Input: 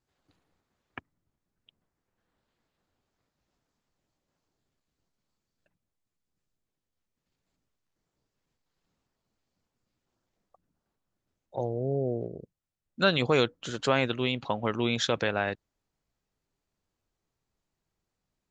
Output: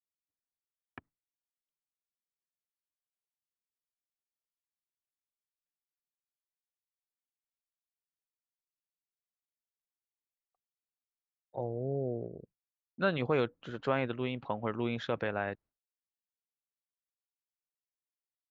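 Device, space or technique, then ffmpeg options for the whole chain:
hearing-loss simulation: -af "lowpass=2100,agate=range=-33dB:threshold=-49dB:ratio=3:detection=peak,volume=-5dB"

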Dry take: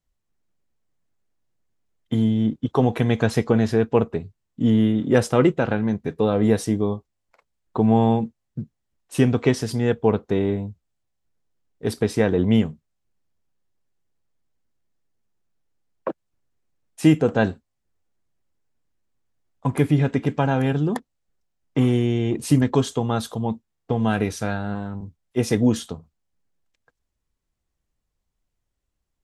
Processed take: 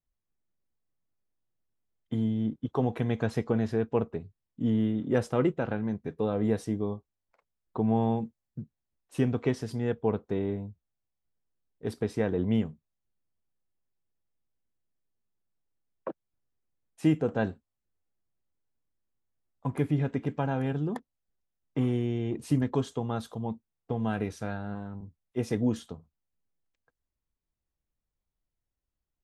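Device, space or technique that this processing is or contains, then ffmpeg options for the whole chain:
behind a face mask: -filter_complex "[0:a]highshelf=frequency=2800:gain=-7,asettb=1/sr,asplit=3[link_01][link_02][link_03];[link_01]atrim=end=8.174[link_04];[link_02]atrim=start=8.17:end=8.6,asetpts=PTS-STARTPTS,afade=type=in:duration=0.004:curve=qsin,afade=type=out:start_time=0.426:duration=0.004:curve=qsin,highshelf=frequency=8000:gain=12[link_05];[link_03]atrim=start=8.596[link_06];[link_04][link_05]acrossfade=duration=0.004:curve1=hsin:curve2=qsin[link_07];[link_07][link_06]acrossfade=duration=0.004:curve1=qsin:curve2=hsin,volume=-8.5dB"

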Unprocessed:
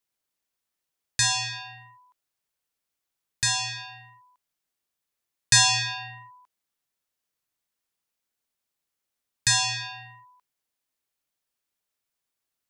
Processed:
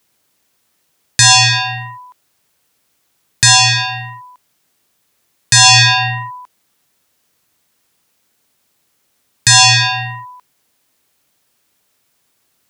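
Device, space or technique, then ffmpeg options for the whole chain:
mastering chain: -af "highpass=58,equalizer=frequency=170:width_type=o:width=2.9:gain=4,acompressor=threshold=-29dB:ratio=1.5,alimiter=level_in=22dB:limit=-1dB:release=50:level=0:latency=1,volume=-1dB"

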